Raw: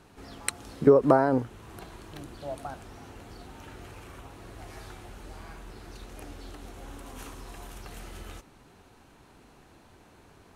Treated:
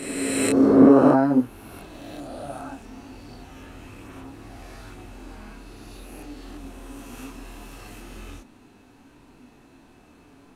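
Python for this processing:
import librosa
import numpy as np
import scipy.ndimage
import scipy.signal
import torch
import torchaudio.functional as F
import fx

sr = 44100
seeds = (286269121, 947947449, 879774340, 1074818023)

y = fx.spec_swells(x, sr, rise_s=2.2)
y = fx.chorus_voices(y, sr, voices=2, hz=0.6, base_ms=25, depth_ms=5.0, mix_pct=50)
y = fx.small_body(y, sr, hz=(260.0, 2600.0), ring_ms=45, db=11)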